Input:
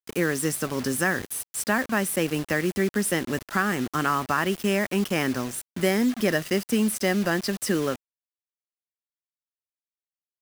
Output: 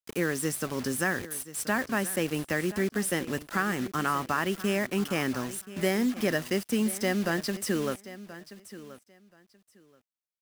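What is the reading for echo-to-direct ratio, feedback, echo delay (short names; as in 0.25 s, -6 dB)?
-16.0 dB, 18%, 1.029 s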